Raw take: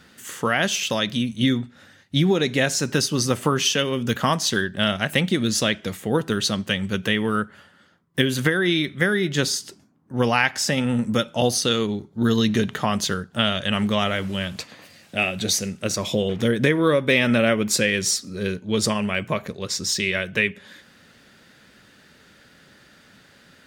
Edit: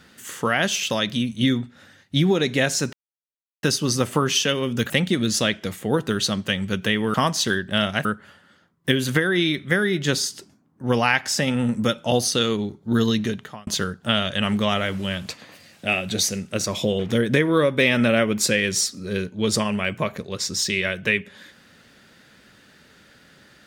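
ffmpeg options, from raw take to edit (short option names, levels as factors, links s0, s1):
-filter_complex "[0:a]asplit=6[s0][s1][s2][s3][s4][s5];[s0]atrim=end=2.93,asetpts=PTS-STARTPTS,afade=t=out:st=2.926:d=0.004:c=hsin,apad=pad_dur=0.7[s6];[s1]atrim=start=2.93:end=4.202,asetpts=PTS-STARTPTS,afade=t=in:d=0.004:c=hsin[s7];[s2]atrim=start=5.108:end=7.352[s8];[s3]atrim=start=4.198:end=5.112[s9];[s4]atrim=start=7.348:end=12.97,asetpts=PTS-STARTPTS,afade=t=out:st=4.982:d=0.64[s10];[s5]atrim=start=12.97,asetpts=PTS-STARTPTS,afade=t=in:d=0.004:c=hsin[s11];[s6][s7]concat=n=2:v=0:a=1[s12];[s12][s8]acrossfade=d=0.004:c1=hsin:c2=hsin[s13];[s13][s9]acrossfade=d=0.004:c1=hsin:c2=hsin[s14];[s10][s11]concat=n=2:v=0:a=1[s15];[s14][s15]acrossfade=d=0.004:c1=hsin:c2=hsin"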